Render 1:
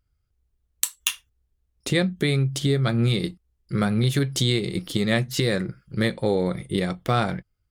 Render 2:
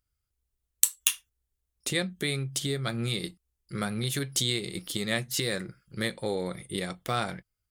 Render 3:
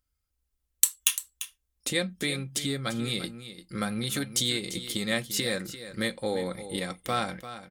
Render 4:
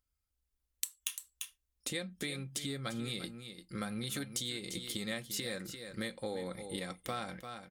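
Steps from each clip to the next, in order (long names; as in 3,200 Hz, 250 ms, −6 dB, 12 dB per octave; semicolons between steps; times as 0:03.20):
drawn EQ curve 150 Hz 0 dB, 4,900 Hz +9 dB, 8,700 Hz +14 dB; level −11 dB
comb filter 3.8 ms, depth 41%; single-tap delay 344 ms −12.5 dB
downward compressor 4 to 1, threshold −30 dBFS, peak gain reduction 13.5 dB; level −5 dB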